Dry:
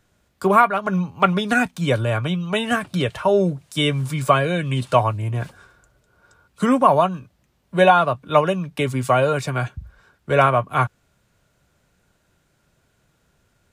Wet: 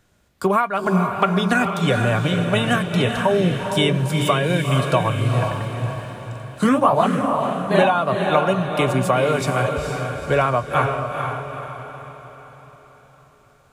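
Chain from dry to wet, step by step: compression, threshold -17 dBFS, peak gain reduction 9 dB; 5.42–7.92 s: ever faster or slower copies 92 ms, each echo +1 st, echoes 2; echo that smears into a reverb 463 ms, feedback 47%, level -4.5 dB; trim +2.5 dB

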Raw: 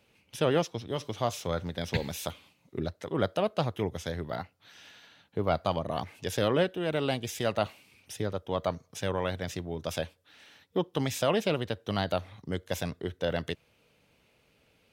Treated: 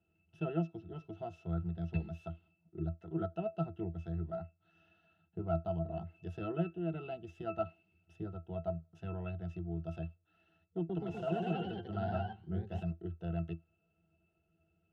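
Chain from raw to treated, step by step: pitch-class resonator E, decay 0.14 s; 10.77–12.83 s: ever faster or slower copies 124 ms, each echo +1 st, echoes 3; trim +1.5 dB

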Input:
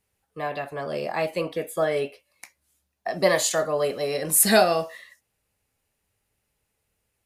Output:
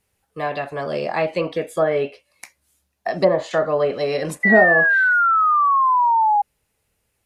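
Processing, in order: low-pass that closes with the level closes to 790 Hz, closed at -16 dBFS; painted sound fall, 4.43–6.42 s, 810–2000 Hz -21 dBFS; trim +5 dB

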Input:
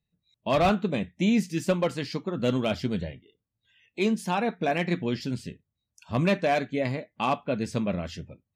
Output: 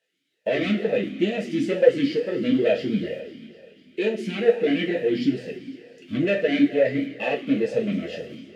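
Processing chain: in parallel at -8 dB: word length cut 8-bit, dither triangular; on the sum: peaking EQ 2.2 kHz -4 dB 0.77 oct; waveshaping leveller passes 3; on a send: thinning echo 251 ms, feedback 70%, high-pass 840 Hz, level -18 dB; on the sum: two-slope reverb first 0.28 s, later 2.7 s, from -18 dB, DRR -1.5 dB; talking filter e-i 2.2 Hz; trim +3 dB

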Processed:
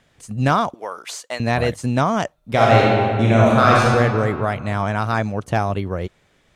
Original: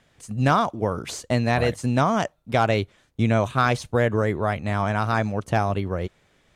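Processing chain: 0.74–1.40 s: high-pass 760 Hz 12 dB/octave; 2.38–3.90 s: reverb throw, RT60 2.2 s, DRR -5 dB; trim +2 dB

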